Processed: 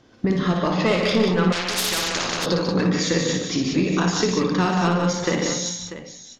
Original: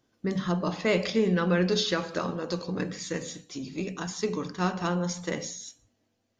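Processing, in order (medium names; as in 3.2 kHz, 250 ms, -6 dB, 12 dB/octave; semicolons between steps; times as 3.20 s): low-pass 5.2 kHz 12 dB/octave; sine folder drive 5 dB, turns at -13 dBFS; compression 5:1, threshold -28 dBFS, peak gain reduction 11.5 dB; multi-tap echo 58/146/184/641 ms -5/-7.5/-6.5/-13 dB; 1.52–2.46 s: spectrum-flattening compressor 4:1; trim +8 dB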